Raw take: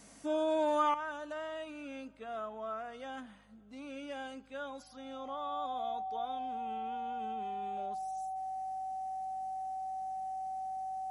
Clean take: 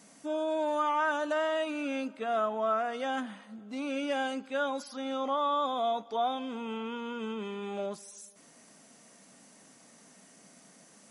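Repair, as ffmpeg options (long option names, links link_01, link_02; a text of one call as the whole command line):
ffmpeg -i in.wav -af "bandreject=frequency=50.7:width_type=h:width=4,bandreject=frequency=101.4:width_type=h:width=4,bandreject=frequency=152.1:width_type=h:width=4,bandreject=frequency=202.8:width_type=h:width=4,bandreject=frequency=760:width=30,asetnsamples=nb_out_samples=441:pad=0,asendcmd='0.94 volume volume 11dB',volume=0dB" out.wav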